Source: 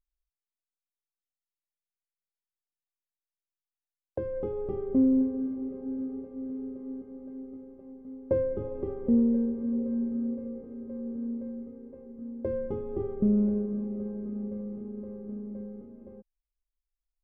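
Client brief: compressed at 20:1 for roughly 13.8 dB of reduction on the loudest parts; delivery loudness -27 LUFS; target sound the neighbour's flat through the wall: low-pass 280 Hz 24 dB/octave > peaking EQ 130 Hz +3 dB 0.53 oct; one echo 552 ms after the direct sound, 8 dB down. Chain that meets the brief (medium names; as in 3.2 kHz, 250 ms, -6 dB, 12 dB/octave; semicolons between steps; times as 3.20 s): compression 20:1, threshold -33 dBFS; low-pass 280 Hz 24 dB/octave; peaking EQ 130 Hz +3 dB 0.53 oct; delay 552 ms -8 dB; trim +13.5 dB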